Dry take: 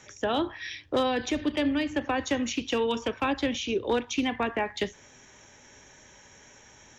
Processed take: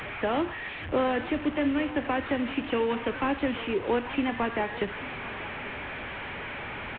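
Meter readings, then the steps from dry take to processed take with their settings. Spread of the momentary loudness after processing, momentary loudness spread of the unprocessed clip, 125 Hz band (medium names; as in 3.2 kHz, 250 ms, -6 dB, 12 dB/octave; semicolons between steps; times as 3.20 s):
9 LU, 4 LU, +3.0 dB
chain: one-bit delta coder 16 kbps, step -30.5 dBFS; delay 837 ms -17 dB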